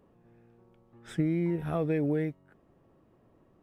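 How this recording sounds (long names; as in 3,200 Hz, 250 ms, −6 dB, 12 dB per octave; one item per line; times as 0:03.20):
background noise floor −65 dBFS
spectral slope −7.5 dB per octave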